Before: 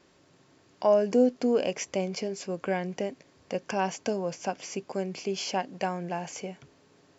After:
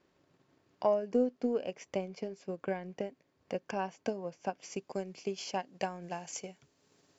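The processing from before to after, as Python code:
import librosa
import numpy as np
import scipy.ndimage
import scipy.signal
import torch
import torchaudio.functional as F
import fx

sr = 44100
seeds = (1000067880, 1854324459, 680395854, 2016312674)

y = fx.high_shelf(x, sr, hz=4900.0, db=fx.steps((0.0, -10.0), (4.61, 2.5), (6.02, 12.0)))
y = fx.transient(y, sr, attack_db=6, sustain_db=-5)
y = F.gain(torch.from_numpy(y), -9.0).numpy()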